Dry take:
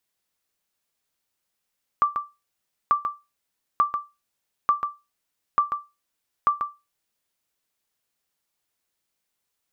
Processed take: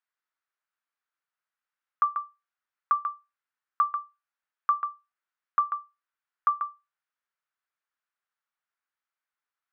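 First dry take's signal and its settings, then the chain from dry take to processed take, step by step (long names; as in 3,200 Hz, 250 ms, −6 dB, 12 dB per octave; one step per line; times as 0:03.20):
ping with an echo 1,170 Hz, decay 0.24 s, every 0.89 s, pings 6, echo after 0.14 s, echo −7.5 dB −11 dBFS
resonant band-pass 1,400 Hz, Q 2.3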